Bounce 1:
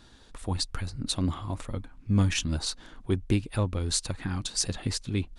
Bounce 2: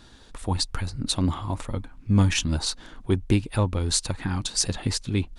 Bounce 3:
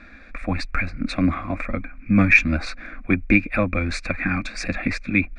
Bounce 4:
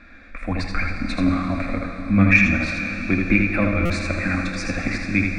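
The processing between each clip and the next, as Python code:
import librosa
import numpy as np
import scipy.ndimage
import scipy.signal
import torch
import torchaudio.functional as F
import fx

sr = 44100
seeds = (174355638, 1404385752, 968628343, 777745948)

y1 = fx.dynamic_eq(x, sr, hz=900.0, q=5.3, threshold_db=-56.0, ratio=4.0, max_db=5)
y1 = y1 * 10.0 ** (4.0 / 20.0)
y2 = fx.lowpass_res(y1, sr, hz=2400.0, q=16.0)
y2 = fx.fixed_phaser(y2, sr, hz=610.0, stages=8)
y2 = y2 * 10.0 ** (7.0 / 20.0)
y3 = y2 + 10.0 ** (-5.0 / 20.0) * np.pad(y2, (int(80 * sr / 1000.0), 0))[:len(y2)]
y3 = fx.rev_plate(y3, sr, seeds[0], rt60_s=4.7, hf_ratio=0.9, predelay_ms=0, drr_db=3.5)
y3 = fx.buffer_glitch(y3, sr, at_s=(3.85,), block=256, repeats=7)
y3 = y3 * 10.0 ** (-2.0 / 20.0)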